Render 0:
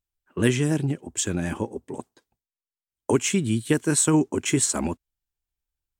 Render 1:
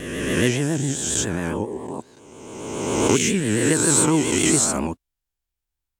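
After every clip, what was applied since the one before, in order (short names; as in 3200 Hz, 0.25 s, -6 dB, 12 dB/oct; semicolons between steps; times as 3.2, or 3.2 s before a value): spectral swells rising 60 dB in 1.73 s; vibrato 7.3 Hz 82 cents; gain -1 dB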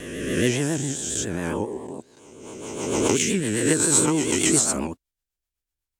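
rotary speaker horn 1.1 Hz, later 8 Hz, at 1.95; tone controls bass -3 dB, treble +2 dB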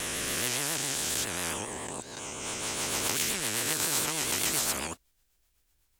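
spectral compressor 4:1; gain -6 dB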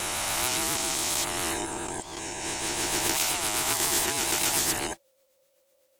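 band-swap scrambler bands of 500 Hz; bell 340 Hz +11 dB 0.29 oct; gain +3 dB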